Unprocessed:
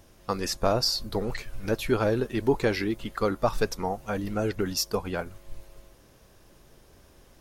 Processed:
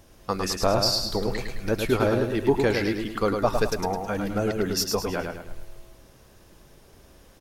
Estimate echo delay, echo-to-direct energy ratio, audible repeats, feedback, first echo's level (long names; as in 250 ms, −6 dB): 106 ms, −4.0 dB, 4, 42%, −5.0 dB